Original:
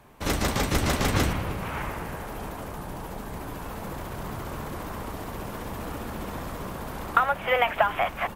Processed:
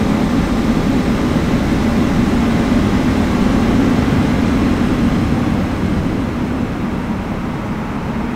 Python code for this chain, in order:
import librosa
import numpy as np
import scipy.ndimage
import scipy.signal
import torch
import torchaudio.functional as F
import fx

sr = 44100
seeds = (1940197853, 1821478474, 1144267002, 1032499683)

y = fx.peak_eq(x, sr, hz=14000.0, db=-14.0, octaves=1.8)
y = y + 10.0 ** (-10.0 / 20.0) * np.pad(y, (int(1131 * sr / 1000.0), 0))[:len(y)]
y = fx.paulstretch(y, sr, seeds[0], factor=6.6, window_s=1.0, from_s=0.51)
y = fx.peak_eq(y, sr, hz=230.0, db=13.0, octaves=0.84)
y = y * 10.0 ** (6.0 / 20.0)